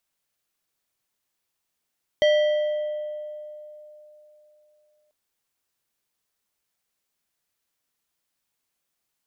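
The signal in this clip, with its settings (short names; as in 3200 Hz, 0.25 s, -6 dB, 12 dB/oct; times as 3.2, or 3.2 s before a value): FM tone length 2.89 s, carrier 603 Hz, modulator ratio 4.26, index 0.54, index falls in 2.78 s exponential, decay 3.37 s, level -14 dB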